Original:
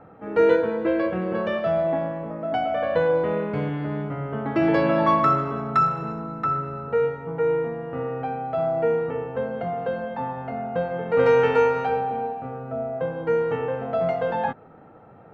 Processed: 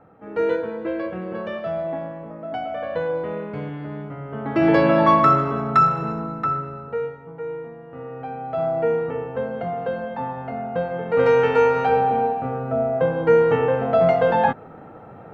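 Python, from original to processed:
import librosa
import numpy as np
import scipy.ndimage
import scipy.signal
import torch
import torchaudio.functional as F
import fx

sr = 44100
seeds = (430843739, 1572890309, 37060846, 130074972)

y = fx.gain(x, sr, db=fx.line((4.25, -4.0), (4.69, 4.0), (6.23, 4.0), (7.35, -8.5), (7.87, -8.5), (8.63, 1.0), (11.51, 1.0), (12.06, 7.0)))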